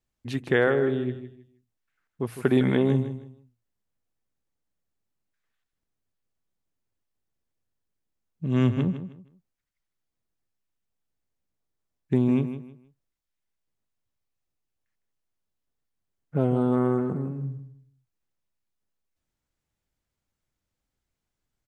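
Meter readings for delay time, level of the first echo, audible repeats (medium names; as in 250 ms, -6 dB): 157 ms, -11.0 dB, 3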